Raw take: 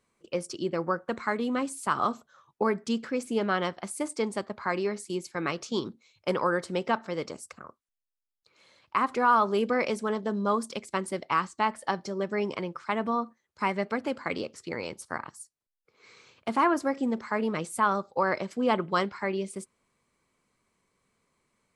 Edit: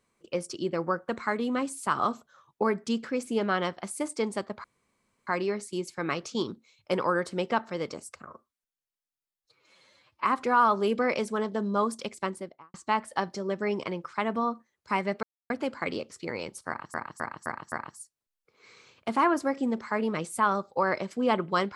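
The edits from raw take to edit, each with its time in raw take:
0:04.64: splice in room tone 0.63 s
0:07.64–0:08.96: time-stretch 1.5×
0:10.85–0:11.45: fade out and dull
0:13.94: splice in silence 0.27 s
0:15.12–0:15.38: repeat, 5 plays

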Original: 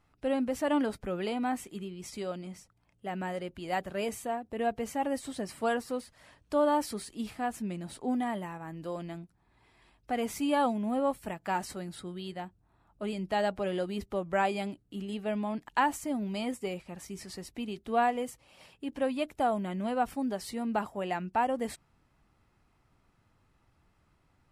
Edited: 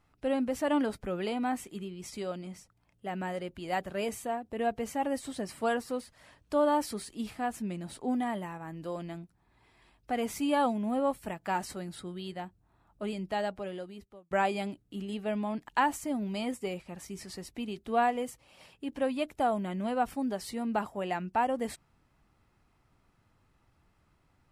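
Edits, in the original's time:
0:13.02–0:14.31: fade out

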